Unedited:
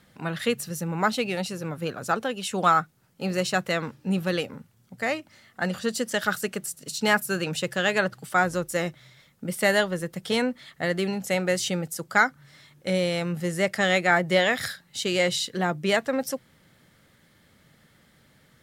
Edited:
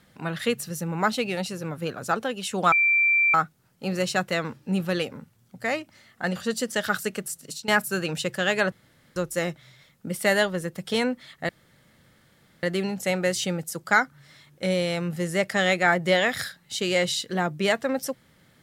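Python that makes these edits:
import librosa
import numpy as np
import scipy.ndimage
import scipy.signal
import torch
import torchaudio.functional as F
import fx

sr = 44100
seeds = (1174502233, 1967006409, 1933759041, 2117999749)

y = fx.edit(x, sr, fx.insert_tone(at_s=2.72, length_s=0.62, hz=2350.0, db=-17.0),
    fx.fade_out_to(start_s=6.79, length_s=0.27, curve='qsin', floor_db=-19.5),
    fx.room_tone_fill(start_s=8.1, length_s=0.44),
    fx.insert_room_tone(at_s=10.87, length_s=1.14), tone=tone)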